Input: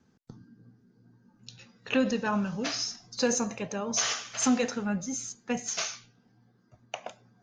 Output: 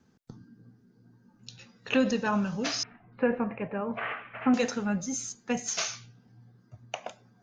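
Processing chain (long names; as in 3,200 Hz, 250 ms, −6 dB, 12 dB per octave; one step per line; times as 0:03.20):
0:02.83–0:04.54: Butterworth low-pass 2,500 Hz 48 dB per octave
0:05.87–0:06.95: parametric band 110 Hz +10 dB 1.1 octaves
level +1 dB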